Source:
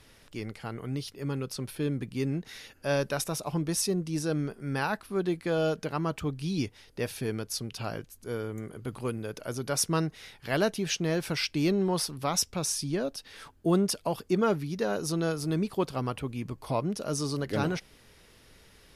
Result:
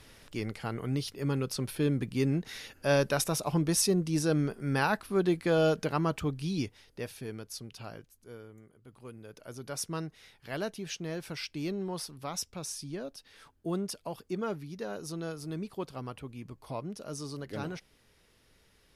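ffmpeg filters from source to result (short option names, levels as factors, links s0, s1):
-af "volume=4.73,afade=t=out:st=5.87:d=1.29:silence=0.316228,afade=t=out:st=7.73:d=1.05:silence=0.251189,afade=t=in:st=8.78:d=0.87:silence=0.266073"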